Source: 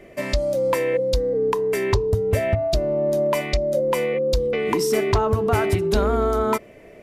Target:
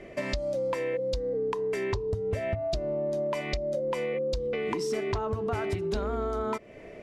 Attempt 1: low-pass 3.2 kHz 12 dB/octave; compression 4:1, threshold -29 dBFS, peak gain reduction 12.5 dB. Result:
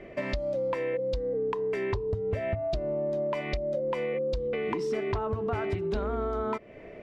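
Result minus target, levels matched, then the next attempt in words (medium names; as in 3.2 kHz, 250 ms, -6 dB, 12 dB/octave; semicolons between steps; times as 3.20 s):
8 kHz band -10.5 dB
low-pass 6.9 kHz 12 dB/octave; compression 4:1, threshold -29 dBFS, peak gain reduction 12.5 dB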